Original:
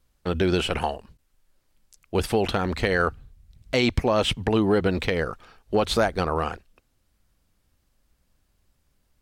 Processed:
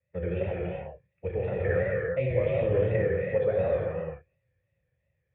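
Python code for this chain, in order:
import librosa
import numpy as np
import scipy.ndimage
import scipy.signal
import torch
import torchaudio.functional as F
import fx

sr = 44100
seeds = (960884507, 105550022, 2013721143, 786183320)

y = scipy.signal.sosfilt(scipy.signal.butter(4, 82.0, 'highpass', fs=sr, output='sos'), x)
y = fx.low_shelf_res(y, sr, hz=180.0, db=10.5, q=3.0)
y = fx.stretch_vocoder(y, sr, factor=0.58)
y = fx.dmg_noise_colour(y, sr, seeds[0], colour='violet', level_db=-57.0)
y = fx.formant_cascade(y, sr, vowel='e')
y = fx.rev_gated(y, sr, seeds[1], gate_ms=430, shape='flat', drr_db=-5.0)
y = fx.vibrato(y, sr, rate_hz=2.8, depth_cents=82.0)
y = F.gain(torch.from_numpy(y), 1.5).numpy()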